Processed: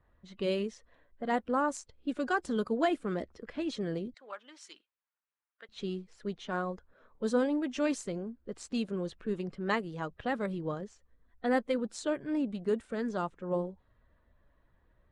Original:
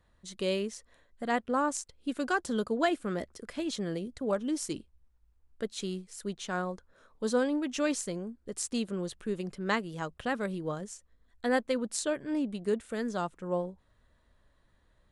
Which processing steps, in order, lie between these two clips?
bin magnitudes rounded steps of 15 dB; 4.14–5.69 HPF 1400 Hz 12 dB/oct; low-pass opened by the level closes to 2600 Hz, open at -25.5 dBFS; high shelf 3800 Hz -7.5 dB

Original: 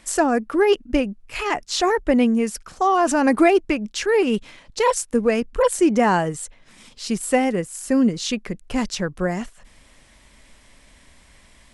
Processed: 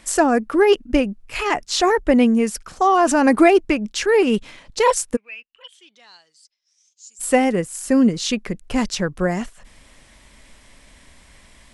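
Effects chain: 5.15–7.19 band-pass 2300 Hz -> 7500 Hz, Q 15; gain +2.5 dB

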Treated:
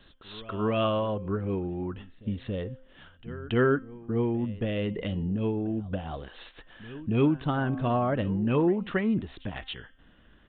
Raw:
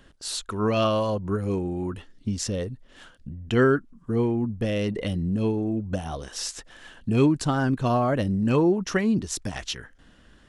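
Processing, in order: de-hum 261.8 Hz, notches 13; reverse echo 0.278 s -19 dB; downsampling 8000 Hz; gain -3.5 dB

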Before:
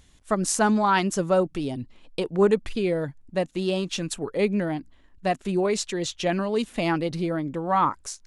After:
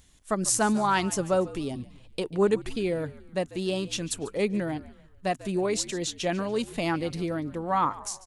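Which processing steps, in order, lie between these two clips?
high shelf 6800 Hz +8.5 dB; on a send: frequency-shifting echo 0.144 s, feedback 45%, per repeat -68 Hz, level -18 dB; on the sum: gain -3.5 dB

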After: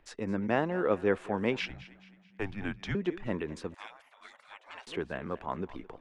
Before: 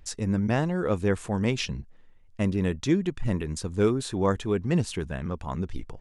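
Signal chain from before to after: thinning echo 0.216 s, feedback 44%, high-pass 270 Hz, level -17 dB; 1.6–2.95 frequency shift -200 Hz; 3.74–4.87 spectral gate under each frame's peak -30 dB weak; three-band isolator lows -16 dB, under 240 Hz, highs -19 dB, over 3300 Hz

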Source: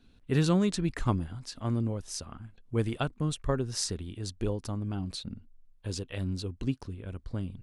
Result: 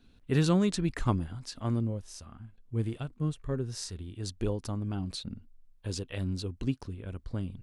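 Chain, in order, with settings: 1.8–4.19 harmonic-percussive split percussive -13 dB

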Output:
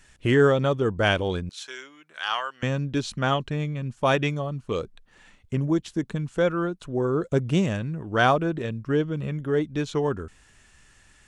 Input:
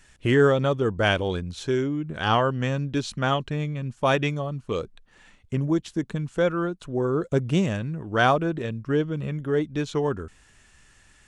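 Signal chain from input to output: 1.49–2.63 HPF 1300 Hz 12 dB/oct

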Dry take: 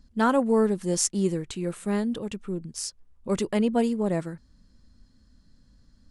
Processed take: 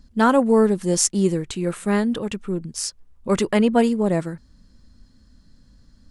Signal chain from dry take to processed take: 1.66–3.89 dynamic EQ 1500 Hz, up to +5 dB, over -45 dBFS, Q 0.78; gain +5.5 dB

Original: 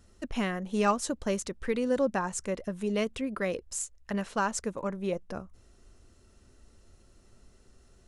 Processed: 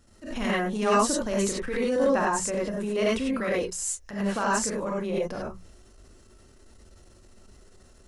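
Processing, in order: notches 60/120/180 Hz; non-linear reverb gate 0.12 s rising, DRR -5 dB; transient shaper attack -9 dB, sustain +3 dB

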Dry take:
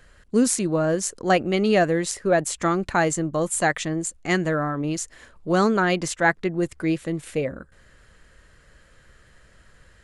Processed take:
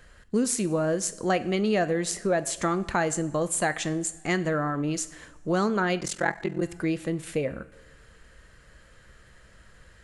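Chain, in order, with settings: two-slope reverb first 0.52 s, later 1.9 s, from -17 dB, DRR 13 dB; 5.99–6.63 ring modulator 21 Hz; compressor 2:1, threshold -25 dBFS, peak gain reduction 6.5 dB

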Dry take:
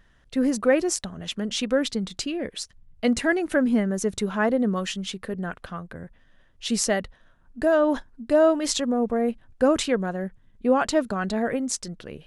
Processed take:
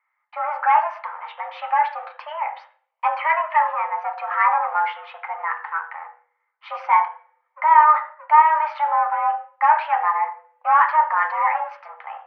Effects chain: sample leveller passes 3; reverb RT60 0.40 s, pre-delay 3 ms, DRR 2 dB; mistuned SSB +310 Hz 600–2200 Hz; gain -6.5 dB

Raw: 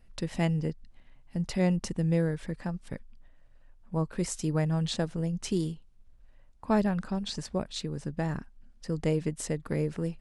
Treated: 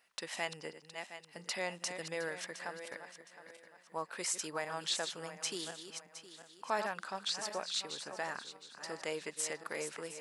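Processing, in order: regenerating reverse delay 0.357 s, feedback 56%, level -10.5 dB; HPF 910 Hz 12 dB/oct; in parallel at +1 dB: limiter -31.5 dBFS, peak gain reduction 11.5 dB; on the sum: gain -3 dB

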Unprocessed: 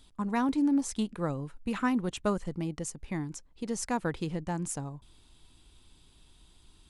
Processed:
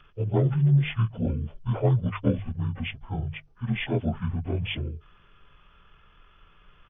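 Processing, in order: inharmonic rescaling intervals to 87%; pitch shift -11.5 st; notches 50/100/150 Hz; gain +7.5 dB

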